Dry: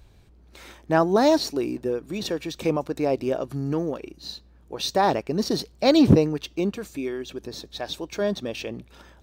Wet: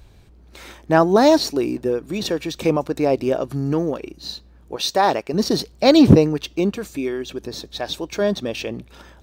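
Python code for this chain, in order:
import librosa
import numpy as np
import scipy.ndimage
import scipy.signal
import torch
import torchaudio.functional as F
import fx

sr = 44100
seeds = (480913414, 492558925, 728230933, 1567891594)

y = fx.low_shelf(x, sr, hz=250.0, db=-11.0, at=(4.76, 5.34))
y = y * librosa.db_to_amplitude(5.0)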